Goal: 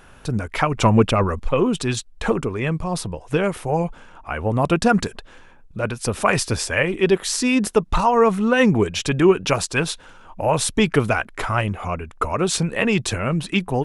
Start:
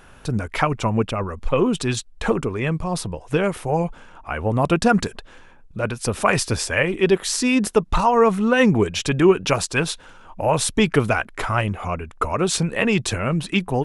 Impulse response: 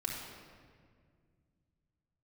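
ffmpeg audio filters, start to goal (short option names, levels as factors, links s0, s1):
-filter_complex "[0:a]asettb=1/sr,asplit=3[s0][s1][s2];[s0]atrim=end=0.774[s3];[s1]atrim=start=0.77:end=1.4,asetpts=PTS-STARTPTS,afade=t=in:d=0.004:c=qsin,afade=t=out:st=0.626:d=0.004:c=qsin,acontrast=73[s4];[s2]atrim=start=1.396[s5];[s3][s4]acrossfade=d=0.004:c1=hsin:c2=qsin[s6];[s6][s5]acrossfade=d=0.004:c1=qsin:c2=hsin"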